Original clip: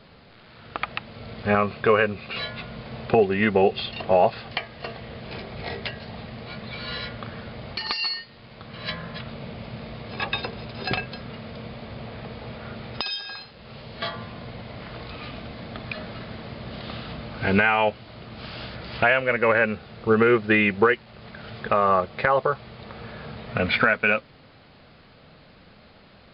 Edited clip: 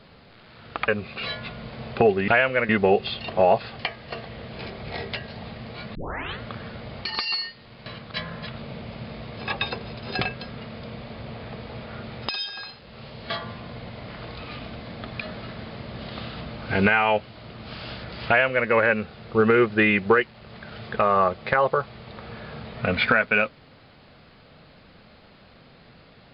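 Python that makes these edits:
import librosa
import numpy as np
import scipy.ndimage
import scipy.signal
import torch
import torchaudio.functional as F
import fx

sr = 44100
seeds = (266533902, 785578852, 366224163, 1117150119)

y = fx.edit(x, sr, fx.cut(start_s=0.88, length_s=1.13),
    fx.tape_start(start_s=6.67, length_s=0.46),
    fx.reverse_span(start_s=8.58, length_s=0.28),
    fx.duplicate(start_s=19.0, length_s=0.41, to_s=3.41), tone=tone)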